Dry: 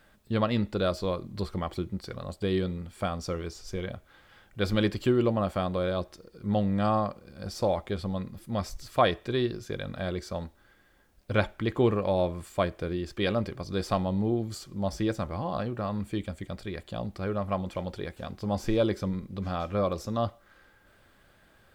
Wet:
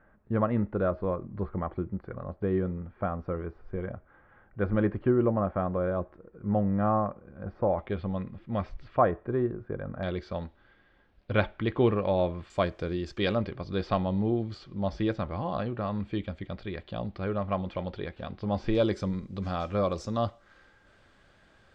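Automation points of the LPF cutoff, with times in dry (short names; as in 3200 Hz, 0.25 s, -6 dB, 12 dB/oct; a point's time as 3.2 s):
LPF 24 dB/oct
1700 Hz
from 7.79 s 2800 Hz
from 8.97 s 1500 Hz
from 10.03 s 3800 Hz
from 12.5 s 6700 Hz
from 13.35 s 4000 Hz
from 18.75 s 7500 Hz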